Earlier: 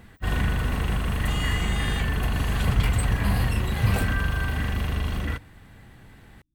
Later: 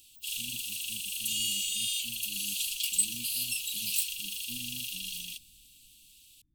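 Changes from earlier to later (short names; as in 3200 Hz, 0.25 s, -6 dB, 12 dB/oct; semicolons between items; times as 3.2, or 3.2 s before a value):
background: add steep high-pass 2600 Hz 96 dB/oct; master: add tone controls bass +4 dB, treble +11 dB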